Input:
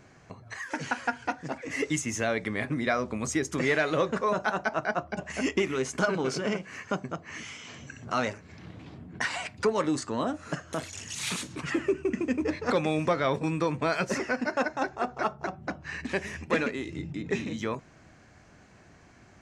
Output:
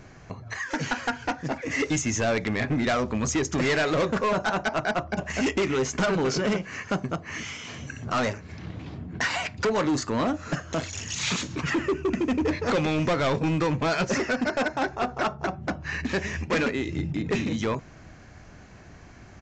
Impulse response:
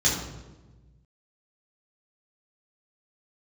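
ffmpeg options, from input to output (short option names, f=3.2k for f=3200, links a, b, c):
-af "lowshelf=f=69:g=12,aresample=16000,asoftclip=type=hard:threshold=-26dB,aresample=44100,volume=5.5dB"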